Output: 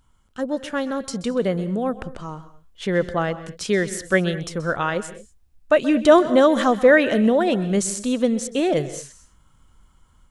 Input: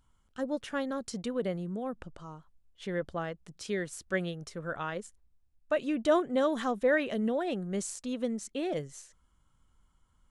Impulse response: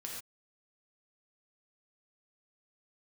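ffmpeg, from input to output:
-filter_complex "[0:a]dynaudnorm=f=930:g=3:m=1.78,asplit=2[s0][s1];[1:a]atrim=start_sample=2205,afade=t=out:st=0.16:d=0.01,atrim=end_sample=7497,adelay=129[s2];[s1][s2]afir=irnorm=-1:irlink=0,volume=0.251[s3];[s0][s3]amix=inputs=2:normalize=0,volume=2.37"

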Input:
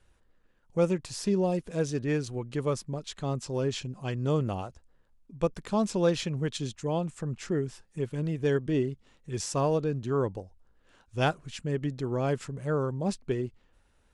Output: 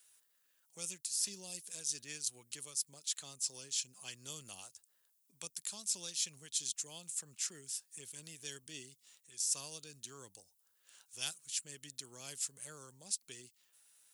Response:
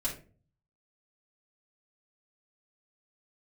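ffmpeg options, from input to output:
-filter_complex "[0:a]acrossover=split=230|3000[s0][s1][s2];[s1]acompressor=threshold=0.00501:ratio=2.5[s3];[s0][s3][s2]amix=inputs=3:normalize=0,crystalizer=i=1.5:c=0,aderivative,areverse,acompressor=threshold=0.0112:ratio=5,areverse,volume=2"

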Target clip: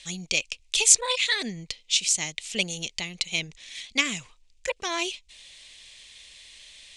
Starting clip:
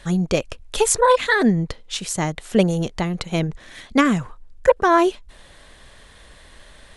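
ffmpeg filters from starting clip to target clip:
-af "lowpass=f=7400:w=0.5412,lowpass=f=7400:w=1.3066,highshelf=f=1900:t=q:w=3:g=7,crystalizer=i=8.5:c=0,volume=0.126"

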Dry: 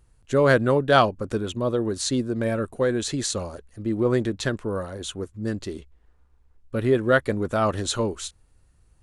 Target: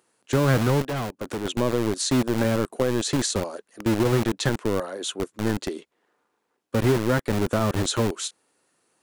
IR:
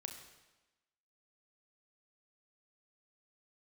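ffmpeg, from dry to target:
-filter_complex "[0:a]acrossover=split=240[s0][s1];[s0]acrusher=bits=4:mix=0:aa=0.000001[s2];[s1]acompressor=threshold=0.0447:ratio=6[s3];[s2][s3]amix=inputs=2:normalize=0,asettb=1/sr,asplit=3[s4][s5][s6];[s4]atrim=end=0.824[s7];[s5]atrim=start=0.82:end=1.45,asetpts=PTS-STARTPTS,afade=t=in:d=0.004:c=qsin,afade=t=out:st=0.626:d=0.004:c=qsin,asoftclip=type=hard:threshold=0.0335[s8];[s6]atrim=start=1.446[s9];[s7][s8]acrossfade=d=0.004:c1=hsin:c2=qsin[s10];[s10][s9]acrossfade=d=0.004:c1=qsin:c2=hsin,volume=1.58"

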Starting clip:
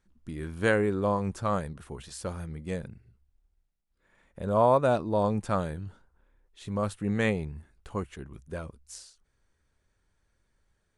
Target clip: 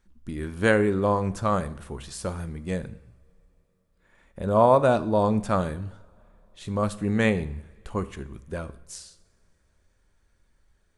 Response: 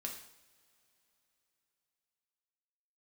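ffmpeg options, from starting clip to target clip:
-filter_complex "[0:a]asplit=2[s0][s1];[1:a]atrim=start_sample=2205,lowshelf=f=71:g=11.5[s2];[s1][s2]afir=irnorm=-1:irlink=0,volume=0.501[s3];[s0][s3]amix=inputs=2:normalize=0,volume=1.19"

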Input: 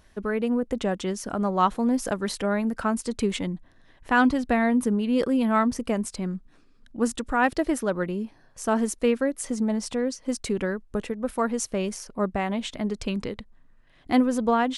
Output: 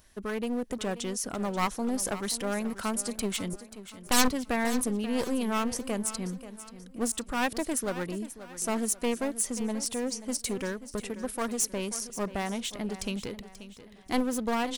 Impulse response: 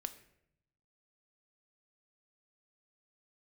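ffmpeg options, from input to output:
-filter_complex "[0:a]aeval=exprs='clip(val(0),-1,0.0422)':c=same,asettb=1/sr,asplit=3[s0][s1][s2];[s0]atrim=end=3.534[s3];[s1]atrim=start=3.53:end=4.28,asetpts=PTS-STARTPTS,afade=t=in:d=0.004:c=qsin,afade=t=out:st=0.746:d=0.004:c=qsin,aeval=exprs='0.376*(cos(1*acos(clip(val(0)/0.376,-1,1)))-cos(1*PI/2))+0.0944*(cos(3*acos(clip(val(0)/0.376,-1,1)))-cos(3*PI/2))+0.133*(cos(8*acos(clip(val(0)/0.376,-1,1)))-cos(8*PI/2))':c=same[s4];[s2]atrim=start=4.276[s5];[s3][s4]acrossfade=d=0.004:c1=hsin:c2=qsin[s6];[s6][s5]acrossfade=d=0.004:c1=qsin:c2=hsin,crystalizer=i=2.5:c=0,asplit=2[s7][s8];[s8]aecho=0:1:534|1068|1602|2136:0.2|0.0798|0.0319|0.0128[s9];[s7][s9]amix=inputs=2:normalize=0,volume=0.531"

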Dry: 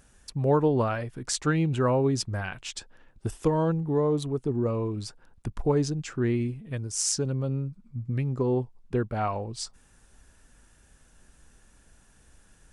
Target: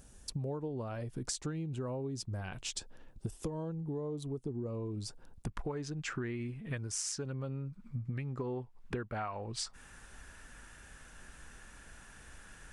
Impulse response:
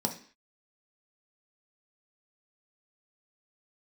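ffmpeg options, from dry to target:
-af "asetnsamples=n=441:p=0,asendcmd='5.47 equalizer g 8.5',equalizer=f=1700:w=0.67:g=-8,acompressor=threshold=0.0141:ratio=16,volume=1.33"

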